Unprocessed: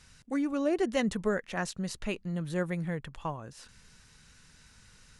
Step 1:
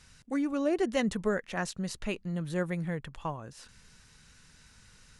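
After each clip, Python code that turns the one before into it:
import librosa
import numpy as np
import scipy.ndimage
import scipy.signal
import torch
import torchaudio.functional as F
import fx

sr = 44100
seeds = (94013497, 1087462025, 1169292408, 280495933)

y = x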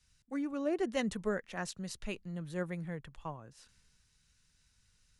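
y = fx.band_widen(x, sr, depth_pct=40)
y = F.gain(torch.from_numpy(y), -6.0).numpy()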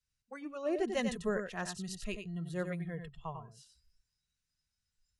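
y = x + 10.0 ** (-6.5 / 20.0) * np.pad(x, (int(93 * sr / 1000.0), 0))[:len(x)]
y = fx.noise_reduce_blind(y, sr, reduce_db=17)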